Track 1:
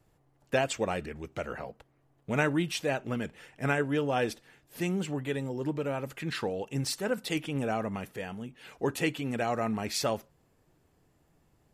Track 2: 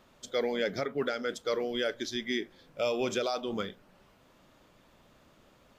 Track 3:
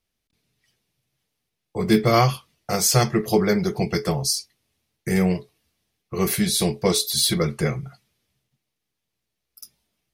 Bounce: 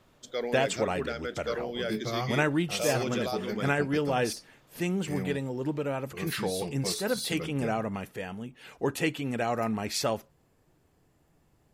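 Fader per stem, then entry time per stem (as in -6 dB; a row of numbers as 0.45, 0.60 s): +1.0, -2.5, -15.5 dB; 0.00, 0.00, 0.00 s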